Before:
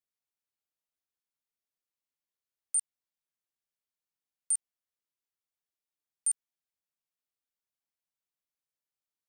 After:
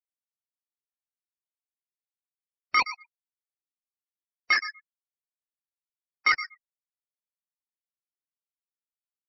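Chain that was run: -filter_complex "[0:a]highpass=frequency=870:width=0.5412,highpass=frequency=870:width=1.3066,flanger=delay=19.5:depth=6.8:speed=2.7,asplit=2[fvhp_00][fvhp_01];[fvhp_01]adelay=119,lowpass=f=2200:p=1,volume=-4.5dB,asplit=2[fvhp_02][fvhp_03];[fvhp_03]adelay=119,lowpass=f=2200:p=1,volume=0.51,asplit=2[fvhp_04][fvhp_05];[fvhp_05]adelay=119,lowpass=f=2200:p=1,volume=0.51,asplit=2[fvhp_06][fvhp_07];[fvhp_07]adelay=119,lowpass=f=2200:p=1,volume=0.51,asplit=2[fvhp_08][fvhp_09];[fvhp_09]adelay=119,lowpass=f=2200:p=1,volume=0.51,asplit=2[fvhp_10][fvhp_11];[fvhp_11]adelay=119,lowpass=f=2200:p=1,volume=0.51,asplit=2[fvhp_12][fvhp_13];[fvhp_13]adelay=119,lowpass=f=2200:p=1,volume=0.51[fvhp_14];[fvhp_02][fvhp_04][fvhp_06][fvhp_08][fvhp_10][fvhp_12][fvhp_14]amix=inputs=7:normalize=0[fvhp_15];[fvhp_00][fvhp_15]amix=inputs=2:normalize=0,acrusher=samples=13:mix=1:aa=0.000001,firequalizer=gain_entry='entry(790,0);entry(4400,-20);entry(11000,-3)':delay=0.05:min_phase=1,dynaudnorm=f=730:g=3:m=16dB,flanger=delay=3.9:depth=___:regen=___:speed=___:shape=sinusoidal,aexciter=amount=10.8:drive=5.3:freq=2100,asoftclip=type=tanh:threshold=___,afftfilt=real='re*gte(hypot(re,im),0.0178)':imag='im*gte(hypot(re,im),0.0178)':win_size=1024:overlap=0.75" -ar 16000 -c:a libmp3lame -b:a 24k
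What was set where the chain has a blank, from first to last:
6.7, 17, 0.35, -8dB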